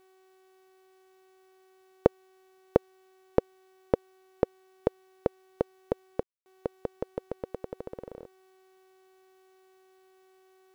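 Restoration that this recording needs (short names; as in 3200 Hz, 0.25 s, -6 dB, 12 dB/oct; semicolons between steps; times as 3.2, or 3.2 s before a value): de-hum 376.9 Hz, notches 21; room tone fill 6.23–6.46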